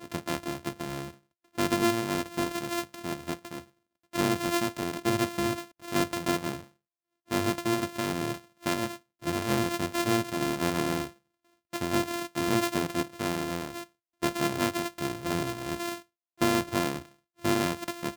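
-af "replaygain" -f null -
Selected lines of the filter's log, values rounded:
track_gain = +10.0 dB
track_peak = 0.213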